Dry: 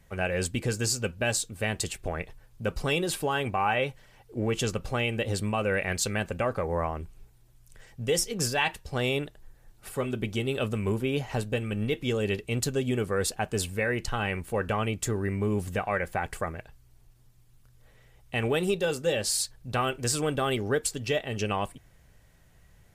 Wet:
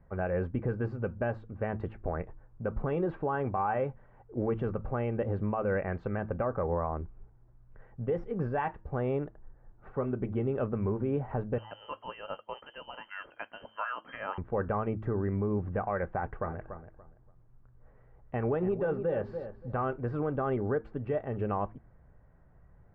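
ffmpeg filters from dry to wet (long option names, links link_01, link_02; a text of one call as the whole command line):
ffmpeg -i in.wav -filter_complex "[0:a]asettb=1/sr,asplit=3[link_01][link_02][link_03];[link_01]atrim=end=11.584[link_04];[link_02]atrim=start=11.58:end=14.38,asetpts=PTS-STARTPTS,afade=type=in:duration=0.004:curve=qsin,afade=type=out:start_time=2.796:duration=0.004:curve=qsin,lowpass=frequency=2700:width_type=q:width=0.5098,lowpass=frequency=2700:width_type=q:width=0.6013,lowpass=frequency=2700:width_type=q:width=0.9,lowpass=frequency=2700:width_type=q:width=2.563,afreqshift=-3200[link_05];[link_03]atrim=start=14.376[link_06];[link_04][link_05]acrossfade=duration=0.004:curve1=hsin:curve2=qsin[link_07];[link_07][link_06]acrossfade=duration=0.004:curve1=qsin:curve2=hsin,asettb=1/sr,asplit=3[link_08][link_09][link_10];[link_08]atrim=end=16.134[link_11];[link_09]atrim=start=16.13:end=19.8,asetpts=PTS-STARTPTS,afade=type=in:duration=0.004:curve=qsin,afade=type=out:start_time=3.666:duration=0.004:curve=qsin,asplit=2[link_12][link_13];[link_13]adelay=287,lowpass=frequency=2000:poles=1,volume=-11dB,asplit=2[link_14][link_15];[link_15]adelay=287,lowpass=frequency=2000:poles=1,volume=0.23,asplit=2[link_16][link_17];[link_17]adelay=287,lowpass=frequency=2000:poles=1,volume=0.23[link_18];[link_12][link_14][link_16][link_18]amix=inputs=4:normalize=0,atrim=end_sample=161847[link_19];[link_10]atrim=start=19.796[link_20];[link_11][link_19]acrossfade=duration=0.004:curve1=hsin:curve2=qsin[link_21];[link_21][link_20]acrossfade=duration=0.004:curve1=qsin:curve2=hsin,lowpass=frequency=1400:width=0.5412,lowpass=frequency=1400:width=1.3066,bandreject=frequency=109.2:width_type=h:width=4,bandreject=frequency=218.4:width_type=h:width=4,bandreject=frequency=327.6:width_type=h:width=4,alimiter=limit=-21.5dB:level=0:latency=1:release=82" out.wav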